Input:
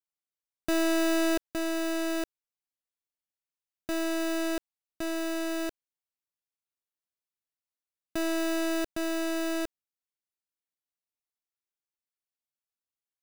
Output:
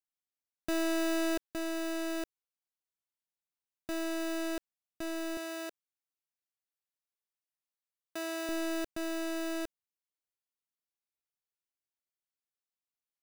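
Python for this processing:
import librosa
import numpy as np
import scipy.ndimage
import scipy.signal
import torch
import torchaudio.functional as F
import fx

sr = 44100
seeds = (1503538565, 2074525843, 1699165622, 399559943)

y = fx.highpass(x, sr, hz=410.0, slope=12, at=(5.37, 8.49))
y = y * 10.0 ** (-5.0 / 20.0)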